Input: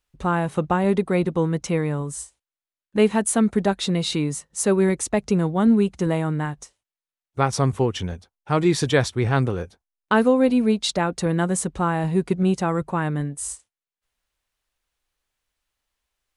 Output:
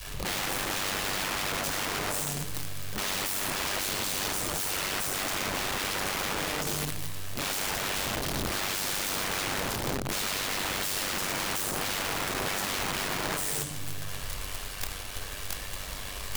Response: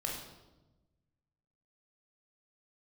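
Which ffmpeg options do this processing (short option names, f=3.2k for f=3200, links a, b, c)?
-filter_complex "[0:a]aeval=exprs='val(0)+0.5*0.0531*sgn(val(0))':c=same[a];[1:a]atrim=start_sample=2205,asetrate=38808,aresample=44100[b];[a][b]afir=irnorm=-1:irlink=0,adynamicequalizer=threshold=0.0708:dfrequency=250:dqfactor=0.89:tfrequency=250:tqfactor=0.89:attack=5:release=100:ratio=0.375:range=1.5:mode=boostabove:tftype=bell,aeval=exprs='(mod(7.5*val(0)+1,2)-1)/7.5':c=same,tremolo=f=97:d=0.519,volume=-6.5dB"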